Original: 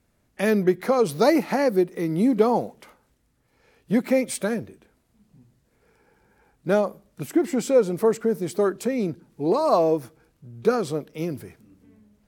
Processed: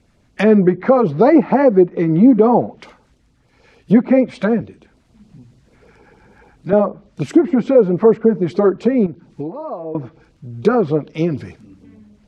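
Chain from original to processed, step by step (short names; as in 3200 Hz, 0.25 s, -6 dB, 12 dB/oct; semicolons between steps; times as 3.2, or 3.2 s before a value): LPF 6200 Hz 12 dB/oct; treble ducked by the level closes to 1400 Hz, closed at -20.5 dBFS; 9.06–9.95 compressor 12:1, threshold -34 dBFS, peak gain reduction 19.5 dB; LFO notch sine 6.7 Hz 390–1900 Hz; maximiser +12 dB; 4.61–6.73 three-band squash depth 40%; gain -1 dB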